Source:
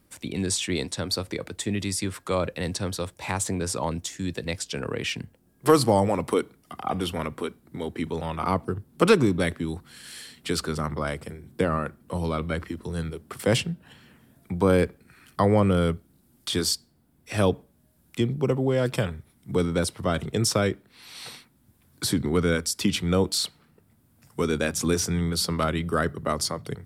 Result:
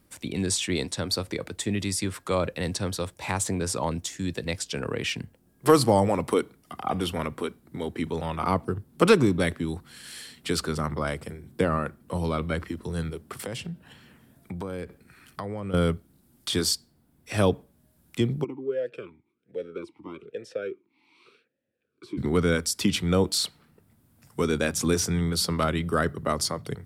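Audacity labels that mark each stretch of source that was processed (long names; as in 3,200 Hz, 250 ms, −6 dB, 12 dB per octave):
13.310000	15.740000	downward compressor, threshold −31 dBFS
18.430000	22.170000	formant filter swept between two vowels e-u 1.7 Hz → 0.63 Hz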